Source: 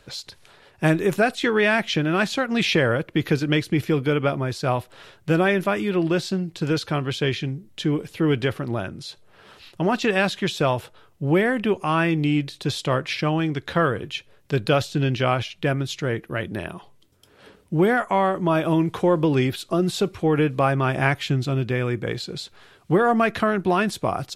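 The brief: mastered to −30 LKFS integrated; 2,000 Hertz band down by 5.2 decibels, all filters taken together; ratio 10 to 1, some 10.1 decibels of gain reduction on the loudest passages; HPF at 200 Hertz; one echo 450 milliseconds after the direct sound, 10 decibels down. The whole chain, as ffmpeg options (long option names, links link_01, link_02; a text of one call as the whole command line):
ffmpeg -i in.wav -af "highpass=200,equalizer=frequency=2000:width_type=o:gain=-7,acompressor=threshold=-26dB:ratio=10,aecho=1:1:450:0.316,volume=1.5dB" out.wav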